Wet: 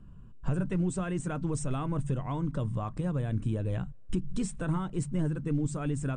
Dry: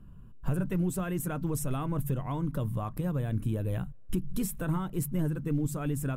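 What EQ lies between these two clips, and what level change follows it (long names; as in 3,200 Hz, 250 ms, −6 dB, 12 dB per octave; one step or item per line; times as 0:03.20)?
linear-phase brick-wall low-pass 9,200 Hz
0.0 dB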